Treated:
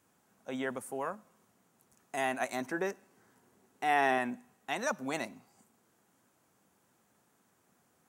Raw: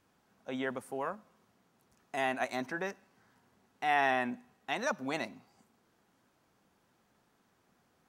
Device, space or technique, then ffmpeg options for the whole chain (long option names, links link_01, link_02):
budget condenser microphone: -filter_complex "[0:a]asettb=1/sr,asplit=3[link_01][link_02][link_03];[link_01]atrim=end=2.714[link_04];[link_02]atrim=start=2.71:end=4.18,asetpts=PTS-STARTPTS,afade=type=in:duration=0.004:curve=qsin,afade=type=out:start_time=1.466:duration=0.004:curve=qsin,equalizer=frequency=370:width=1.6:gain=6[link_05];[link_03]atrim=start=4.176[link_06];[link_04][link_05]acrossfade=duration=0.004:curve1=hsin:curve2=qsin[link_07];[link_07][link_06]acrossfade=duration=0.004:curve1=qsin:curve2=hsin,highpass=81,highshelf=frequency=6000:width_type=q:width=1.5:gain=6.5"